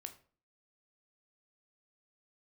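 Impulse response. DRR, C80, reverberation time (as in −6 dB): 6.5 dB, 18.0 dB, 0.40 s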